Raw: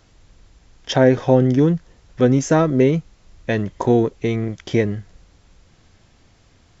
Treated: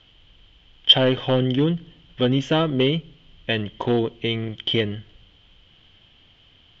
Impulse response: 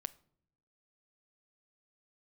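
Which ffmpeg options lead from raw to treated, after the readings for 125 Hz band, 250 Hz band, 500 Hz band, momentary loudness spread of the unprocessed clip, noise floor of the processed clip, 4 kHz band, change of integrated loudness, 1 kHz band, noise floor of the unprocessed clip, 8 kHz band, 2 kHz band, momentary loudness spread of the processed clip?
-5.0 dB, -5.5 dB, -5.5 dB, 10 LU, -55 dBFS, +14.5 dB, -3.0 dB, -5.0 dB, -55 dBFS, n/a, -1.0 dB, 13 LU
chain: -filter_complex "[0:a]aeval=exprs='clip(val(0),-1,0.422)':c=same,lowpass=f=3.1k:t=q:w=15,asplit=2[a][b];[1:a]atrim=start_sample=2205[c];[b][c]afir=irnorm=-1:irlink=0,volume=0.5dB[d];[a][d]amix=inputs=2:normalize=0,volume=-10dB"

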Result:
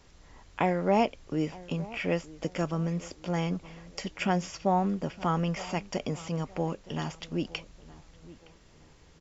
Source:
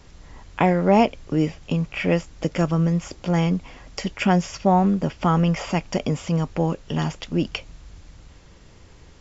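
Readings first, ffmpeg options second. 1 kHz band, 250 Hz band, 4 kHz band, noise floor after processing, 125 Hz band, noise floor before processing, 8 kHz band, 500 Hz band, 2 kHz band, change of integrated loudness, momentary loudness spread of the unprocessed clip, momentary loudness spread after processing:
-7.0 dB, -9.5 dB, -6.5 dB, -57 dBFS, -10.0 dB, -48 dBFS, n/a, -7.0 dB, -7.0 dB, -8.5 dB, 9 LU, 10 LU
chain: -filter_complex "[0:a]bass=f=250:g=-4,treble=f=4k:g=1,asplit=2[a][b];[b]adelay=916,lowpass=f=1.7k:p=1,volume=-19dB,asplit=2[c][d];[d]adelay=916,lowpass=f=1.7k:p=1,volume=0.37,asplit=2[e][f];[f]adelay=916,lowpass=f=1.7k:p=1,volume=0.37[g];[a][c][e][g]amix=inputs=4:normalize=0,volume=-7dB"

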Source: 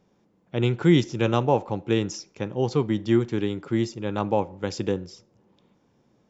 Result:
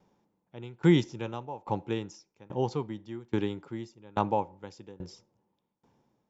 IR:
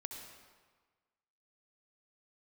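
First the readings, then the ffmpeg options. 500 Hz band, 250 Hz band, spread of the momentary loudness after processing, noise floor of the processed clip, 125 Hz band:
-8.5 dB, -7.0 dB, 21 LU, -80 dBFS, -7.5 dB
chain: -af "equalizer=f=890:t=o:w=0.34:g=8,aeval=exprs='val(0)*pow(10,-24*if(lt(mod(1.2*n/s,1),2*abs(1.2)/1000),1-mod(1.2*n/s,1)/(2*abs(1.2)/1000),(mod(1.2*n/s,1)-2*abs(1.2)/1000)/(1-2*abs(1.2)/1000))/20)':c=same,volume=-1.5dB"

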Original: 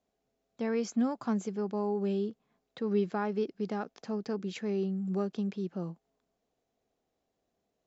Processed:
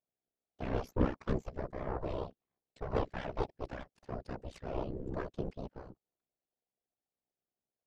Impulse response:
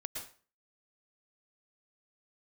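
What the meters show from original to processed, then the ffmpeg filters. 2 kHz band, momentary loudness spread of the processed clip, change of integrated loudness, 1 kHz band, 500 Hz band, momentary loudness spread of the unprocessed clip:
-2.5 dB, 12 LU, -6.0 dB, -2.5 dB, -6.0 dB, 7 LU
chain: -af "lowpass=5.3k,aeval=exprs='0.126*(cos(1*acos(clip(val(0)/0.126,-1,1)))-cos(1*PI/2))+0.0562*(cos(4*acos(clip(val(0)/0.126,-1,1)))-cos(4*PI/2))+0.0126*(cos(7*acos(clip(val(0)/0.126,-1,1)))-cos(7*PI/2))+0.00631*(cos(8*acos(clip(val(0)/0.126,-1,1)))-cos(8*PI/2))':c=same,afftfilt=real='hypot(re,im)*cos(2*PI*random(0))':imag='hypot(re,im)*sin(2*PI*random(1))':win_size=512:overlap=0.75,aeval=exprs='val(0)*sin(2*PI*32*n/s)':c=same,volume=2.5dB"

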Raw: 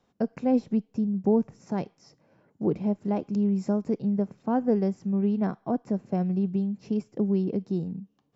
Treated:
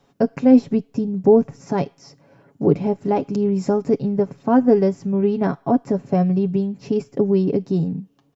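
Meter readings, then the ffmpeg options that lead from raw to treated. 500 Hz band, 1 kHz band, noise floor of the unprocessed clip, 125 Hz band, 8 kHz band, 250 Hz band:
+11.0 dB, +9.5 dB, -70 dBFS, +7.0 dB, n/a, +7.0 dB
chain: -af "aecho=1:1:7.2:0.56,volume=9dB"

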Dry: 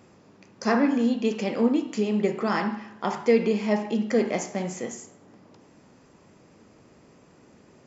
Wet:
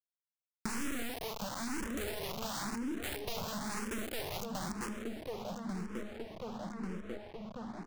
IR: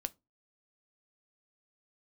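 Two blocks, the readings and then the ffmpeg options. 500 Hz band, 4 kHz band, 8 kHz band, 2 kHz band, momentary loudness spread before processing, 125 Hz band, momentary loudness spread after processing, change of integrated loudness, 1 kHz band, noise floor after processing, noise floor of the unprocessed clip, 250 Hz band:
-16.0 dB, -2.5 dB, n/a, -8.5 dB, 9 LU, -9.0 dB, 6 LU, -14.5 dB, -10.5 dB, under -85 dBFS, -56 dBFS, -14.5 dB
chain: -filter_complex "[0:a]afwtdn=0.0316,aeval=exprs='val(0)*gte(abs(val(0)),0.0282)':c=same,aeval=exprs='(tanh(70.8*val(0)+0.15)-tanh(0.15))/70.8':c=same,lowshelf=f=380:g=2.5,asplit=2[a][b];[b]adelay=1143,lowpass=f=4k:p=1,volume=-17.5dB,asplit=2[c][d];[d]adelay=1143,lowpass=f=4k:p=1,volume=0.47,asplit=2[e][f];[f]adelay=1143,lowpass=f=4k:p=1,volume=0.47,asplit=2[g][h];[h]adelay=1143,lowpass=f=4k:p=1,volume=0.47[i];[a][c][e][g][i]amix=inputs=5:normalize=0,aeval=exprs='0.0266*sin(PI/2*3.98*val(0)/0.0266)':c=same,acompressor=threshold=-50dB:ratio=8,bass=f=250:g=3,treble=f=4k:g=5,asplit=2[j][k];[k]afreqshift=0.98[l];[j][l]amix=inputs=2:normalize=1,volume=14dB"

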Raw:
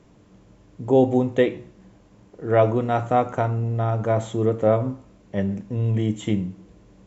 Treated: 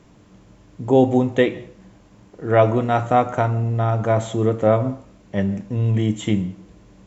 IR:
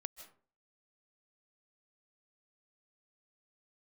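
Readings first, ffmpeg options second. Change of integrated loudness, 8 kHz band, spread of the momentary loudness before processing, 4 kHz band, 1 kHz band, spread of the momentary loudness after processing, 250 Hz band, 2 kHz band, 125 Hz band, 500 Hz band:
+2.5 dB, n/a, 12 LU, +5.0 dB, +3.5 dB, 12 LU, +3.0 dB, +5.0 dB, +3.0 dB, +2.0 dB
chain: -filter_complex "[0:a]asplit=2[a][b];[b]highpass=f=420:w=0.5412,highpass=f=420:w=1.3066[c];[1:a]atrim=start_sample=2205[d];[c][d]afir=irnorm=-1:irlink=0,volume=-7.5dB[e];[a][e]amix=inputs=2:normalize=0,volume=3dB"

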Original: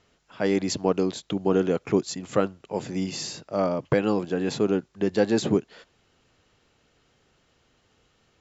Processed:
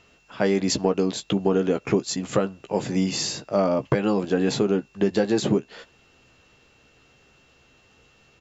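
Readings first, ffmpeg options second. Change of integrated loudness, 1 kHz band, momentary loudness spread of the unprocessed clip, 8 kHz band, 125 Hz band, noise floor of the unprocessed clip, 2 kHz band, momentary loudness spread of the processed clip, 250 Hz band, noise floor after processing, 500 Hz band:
+2.0 dB, +2.0 dB, 7 LU, n/a, +3.0 dB, -67 dBFS, +2.0 dB, 4 LU, +2.0 dB, -59 dBFS, +1.5 dB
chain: -filter_complex "[0:a]acompressor=threshold=-23dB:ratio=6,aeval=exprs='val(0)+0.000794*sin(2*PI*2700*n/s)':c=same,acontrast=37,asplit=2[a][b];[b]adelay=15,volume=-8.5dB[c];[a][c]amix=inputs=2:normalize=0"

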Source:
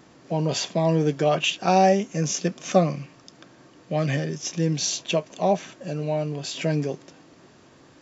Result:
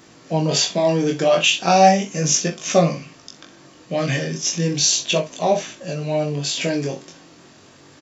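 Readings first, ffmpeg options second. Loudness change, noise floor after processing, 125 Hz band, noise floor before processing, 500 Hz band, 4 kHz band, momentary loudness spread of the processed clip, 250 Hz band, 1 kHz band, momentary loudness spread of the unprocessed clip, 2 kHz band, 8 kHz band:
+5.0 dB, -48 dBFS, +1.5 dB, -53 dBFS, +4.0 dB, +8.5 dB, 11 LU, +2.5 dB, +5.0 dB, 10 LU, +7.0 dB, n/a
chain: -af "aecho=1:1:42|62:0.266|0.141,flanger=delay=18:depth=5.7:speed=0.35,highshelf=f=2.4k:g=8,volume=5.5dB"

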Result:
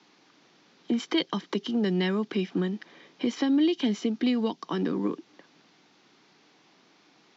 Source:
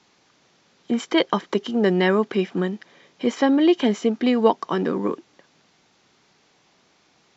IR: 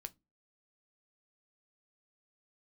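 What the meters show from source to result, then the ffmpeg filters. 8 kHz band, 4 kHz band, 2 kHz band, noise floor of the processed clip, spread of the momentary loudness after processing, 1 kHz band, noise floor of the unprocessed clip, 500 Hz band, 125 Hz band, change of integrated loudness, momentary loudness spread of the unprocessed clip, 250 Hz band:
n/a, -3.5 dB, -8.5 dB, -62 dBFS, 8 LU, -12.0 dB, -61 dBFS, -10.0 dB, -4.0 dB, -6.5 dB, 9 LU, -4.5 dB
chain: -filter_complex "[0:a]acrossover=split=190|3000[a][b][c];[b]acompressor=threshold=-30dB:ratio=6[d];[a][d][c]amix=inputs=3:normalize=0,highpass=f=120:w=0.5412,highpass=f=120:w=1.3066,equalizer=f=130:t=q:w=4:g=-4,equalizer=f=300:t=q:w=4:g=6,equalizer=f=580:t=q:w=4:g=-3,lowpass=f=5.9k:w=0.5412,lowpass=f=5.9k:w=1.3066"

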